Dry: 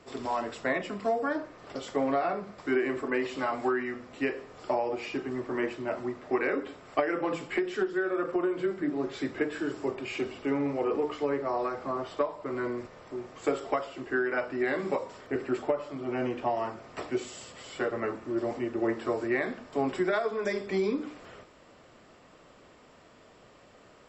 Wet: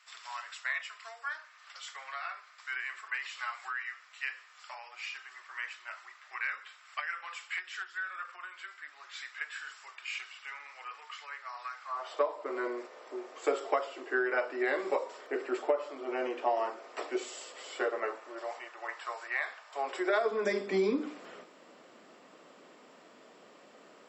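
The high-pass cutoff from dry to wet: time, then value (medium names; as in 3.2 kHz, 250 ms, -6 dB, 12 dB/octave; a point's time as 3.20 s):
high-pass 24 dB/octave
11.83 s 1.3 kHz
12.25 s 370 Hz
17.80 s 370 Hz
18.78 s 830 Hz
19.65 s 830 Hz
20.42 s 200 Hz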